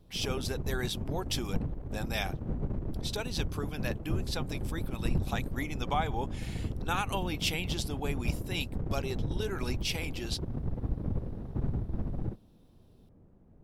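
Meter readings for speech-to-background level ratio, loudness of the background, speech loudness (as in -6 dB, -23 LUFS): 0.5 dB, -37.0 LUFS, -36.5 LUFS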